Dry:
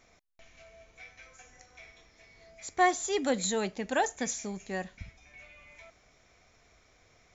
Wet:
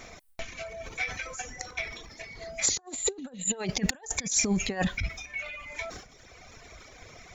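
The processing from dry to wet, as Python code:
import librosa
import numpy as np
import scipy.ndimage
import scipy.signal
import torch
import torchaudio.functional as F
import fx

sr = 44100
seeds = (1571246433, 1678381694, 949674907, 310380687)

y = fx.spec_repair(x, sr, seeds[0], start_s=2.71, length_s=0.82, low_hz=1800.0, high_hz=6900.0, source='both')
y = fx.transient(y, sr, attack_db=5, sustain_db=9)
y = fx.dereverb_blind(y, sr, rt60_s=1.4)
y = fx.over_compress(y, sr, threshold_db=-38.0, ratio=-0.5)
y = np.clip(y, -10.0 ** (-18.0 / 20.0), 10.0 ** (-18.0 / 20.0))
y = F.gain(torch.from_numpy(y), 8.0).numpy()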